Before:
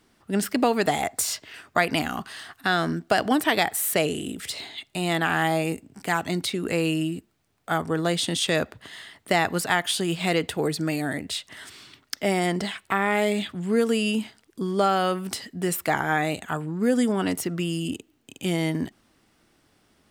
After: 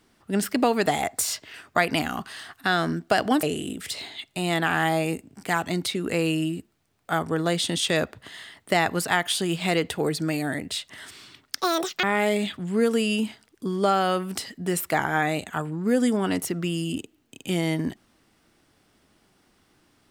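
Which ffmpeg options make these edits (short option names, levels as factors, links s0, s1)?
-filter_complex "[0:a]asplit=4[s0][s1][s2][s3];[s0]atrim=end=3.432[s4];[s1]atrim=start=4.018:end=12.204[s5];[s2]atrim=start=12.2:end=12.99,asetpts=PTS-STARTPTS,asetrate=82026,aresample=44100[s6];[s3]atrim=start=12.986[s7];[s4][s5]acrossfade=d=0.004:c1=hsin:c2=hsin[s8];[s8][s6]acrossfade=d=0.004:c1=hsin:c2=hsin[s9];[s9][s7]acrossfade=d=0.004:c1=hsin:c2=hsin"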